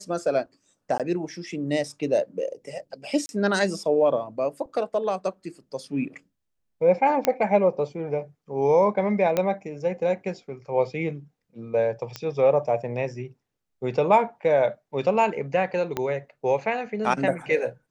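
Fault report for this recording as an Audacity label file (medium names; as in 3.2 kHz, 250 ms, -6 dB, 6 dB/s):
0.980000	1.000000	dropout 17 ms
3.260000	3.290000	dropout 31 ms
7.250000	7.250000	pop -7 dBFS
9.370000	9.370000	pop -10 dBFS
12.160000	12.160000	pop -16 dBFS
15.970000	15.970000	pop -12 dBFS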